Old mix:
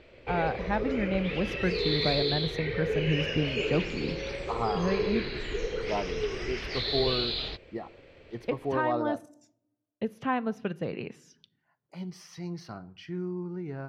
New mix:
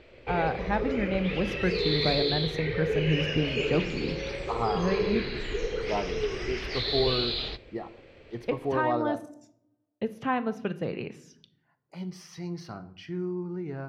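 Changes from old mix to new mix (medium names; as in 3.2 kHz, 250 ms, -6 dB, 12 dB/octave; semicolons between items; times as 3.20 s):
speech: send +8.5 dB; background: send on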